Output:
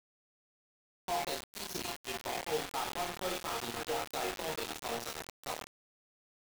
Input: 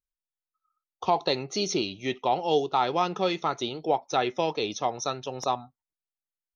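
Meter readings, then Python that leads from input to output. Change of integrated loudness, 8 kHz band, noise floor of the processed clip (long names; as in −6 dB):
−10.0 dB, can't be measured, below −85 dBFS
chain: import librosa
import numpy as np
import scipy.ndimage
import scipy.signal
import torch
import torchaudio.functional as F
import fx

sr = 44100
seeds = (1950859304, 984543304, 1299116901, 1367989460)

y = fx.echo_stepped(x, sr, ms=254, hz=2500.0, octaves=-0.7, feedback_pct=70, wet_db=-2)
y = fx.leveller(y, sr, passes=1)
y = fx.resonator_bank(y, sr, root=39, chord='minor', decay_s=0.65)
y = fx.quant_dither(y, sr, seeds[0], bits=6, dither='none')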